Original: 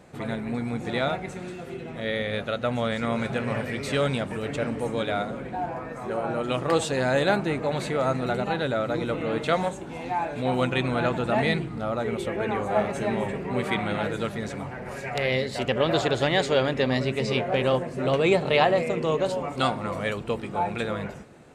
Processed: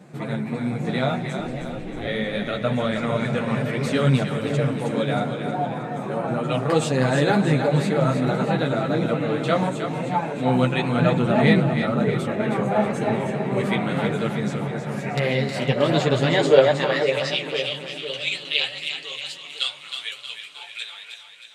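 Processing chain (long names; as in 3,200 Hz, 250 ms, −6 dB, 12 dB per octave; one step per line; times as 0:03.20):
high-pass filter sweep 160 Hz → 3,200 Hz, 0:16.26–0:17.23
0:01.39–0:02.07: ring modulation 140 Hz
multi-voice chorus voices 4, 0.98 Hz, delay 11 ms, depth 4.5 ms
echo with a time of its own for lows and highs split 560 Hz, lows 506 ms, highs 315 ms, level −7 dB
level +4 dB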